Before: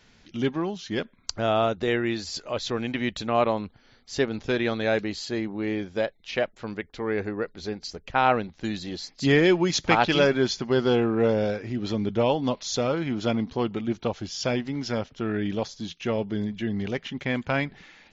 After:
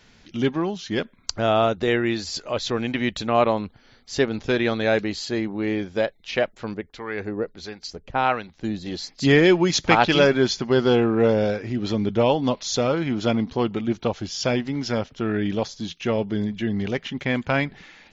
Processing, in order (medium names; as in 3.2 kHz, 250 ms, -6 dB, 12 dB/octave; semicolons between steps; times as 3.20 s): 6.74–8.86 s: harmonic tremolo 1.5 Hz, depth 70%, crossover 880 Hz; trim +3.5 dB